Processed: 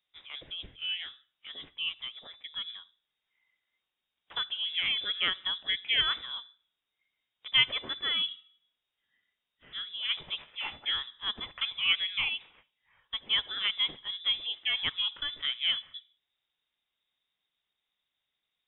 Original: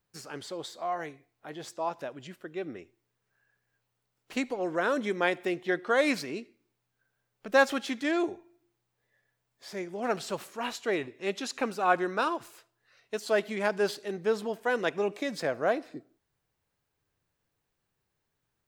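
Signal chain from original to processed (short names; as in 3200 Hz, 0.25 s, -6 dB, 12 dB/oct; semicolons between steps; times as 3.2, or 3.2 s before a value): notches 60/120/180/240 Hz; inverted band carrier 3700 Hz; gain -2.5 dB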